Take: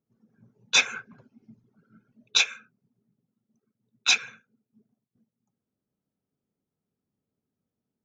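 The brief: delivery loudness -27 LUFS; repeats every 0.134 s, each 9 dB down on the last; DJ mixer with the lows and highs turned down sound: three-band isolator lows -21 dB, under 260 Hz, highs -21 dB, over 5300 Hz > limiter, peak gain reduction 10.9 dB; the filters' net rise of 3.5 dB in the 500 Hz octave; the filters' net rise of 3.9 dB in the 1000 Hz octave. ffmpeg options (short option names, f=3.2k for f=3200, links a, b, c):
-filter_complex "[0:a]acrossover=split=260 5300:gain=0.0891 1 0.0891[a][b][c];[a][b][c]amix=inputs=3:normalize=0,equalizer=f=500:t=o:g=3.5,equalizer=f=1k:t=o:g=4.5,aecho=1:1:134|268|402|536:0.355|0.124|0.0435|0.0152,volume=4.5dB,alimiter=limit=-14.5dB:level=0:latency=1"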